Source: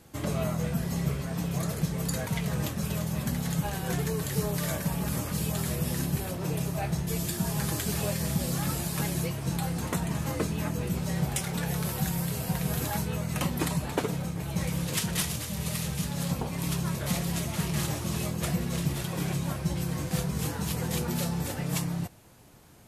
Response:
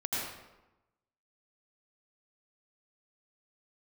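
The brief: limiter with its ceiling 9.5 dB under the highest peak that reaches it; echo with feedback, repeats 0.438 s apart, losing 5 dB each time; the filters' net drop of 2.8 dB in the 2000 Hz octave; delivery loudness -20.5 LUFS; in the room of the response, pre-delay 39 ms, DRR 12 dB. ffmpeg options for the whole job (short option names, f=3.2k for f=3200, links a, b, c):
-filter_complex "[0:a]equalizer=f=2k:t=o:g=-3.5,alimiter=limit=-22dB:level=0:latency=1,aecho=1:1:438|876|1314|1752|2190|2628|3066:0.562|0.315|0.176|0.0988|0.0553|0.031|0.0173,asplit=2[a][b];[1:a]atrim=start_sample=2205,adelay=39[c];[b][c]afir=irnorm=-1:irlink=0,volume=-18dB[d];[a][d]amix=inputs=2:normalize=0,volume=9.5dB"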